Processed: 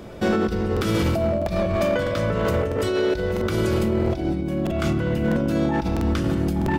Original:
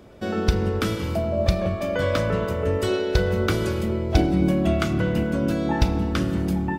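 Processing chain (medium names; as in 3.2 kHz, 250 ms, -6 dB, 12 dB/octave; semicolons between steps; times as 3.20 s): compressor with a negative ratio -27 dBFS, ratio -1; overload inside the chain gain 21 dB; on a send at -13.5 dB: reverberation RT60 0.40 s, pre-delay 6 ms; on the sum: crackling interface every 0.65 s, samples 2048, repeat, from 0.72 s; trim +4.5 dB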